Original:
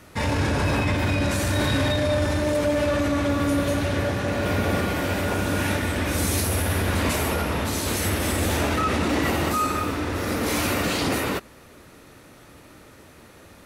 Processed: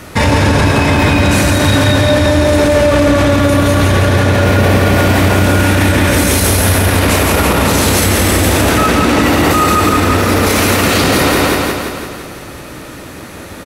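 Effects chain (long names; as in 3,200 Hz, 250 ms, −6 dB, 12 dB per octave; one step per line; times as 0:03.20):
on a send: repeating echo 170 ms, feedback 59%, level −3 dB
on the sum: boost into a limiter +17 dB
level −1 dB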